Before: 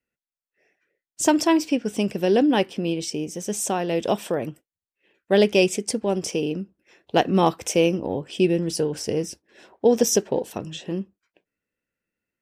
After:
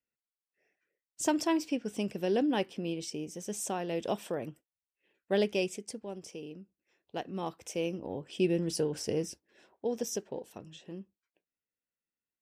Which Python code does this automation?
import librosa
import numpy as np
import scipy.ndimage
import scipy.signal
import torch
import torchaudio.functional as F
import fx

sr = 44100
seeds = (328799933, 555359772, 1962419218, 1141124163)

y = fx.gain(x, sr, db=fx.line((5.32, -10.0), (6.16, -18.5), (7.36, -18.5), (8.6, -7.0), (9.27, -7.0), (9.86, -15.5)))